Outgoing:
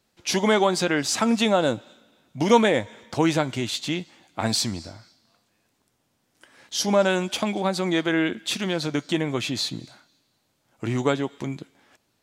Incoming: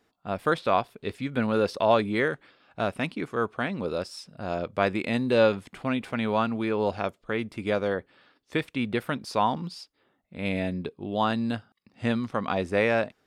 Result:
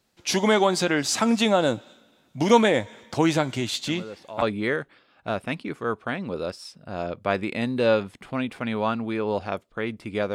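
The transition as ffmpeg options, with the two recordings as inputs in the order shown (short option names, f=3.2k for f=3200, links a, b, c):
-filter_complex "[1:a]asplit=2[a][b];[0:a]apad=whole_dur=10.34,atrim=end=10.34,atrim=end=4.422[c];[b]atrim=start=1.938:end=7.86[d];[a]atrim=start=1.39:end=1.94,asetpts=PTS-STARTPTS,volume=-14.5dB,afade=t=in:d=0.004:c=hsin,afade=t=out:st=0.546:d=0.004:c=hsin,adelay=3870[e];[c][d]acrossfade=d=0.004:c1=hsin:c2=hsin[f];[f][e]amix=inputs=2:normalize=0"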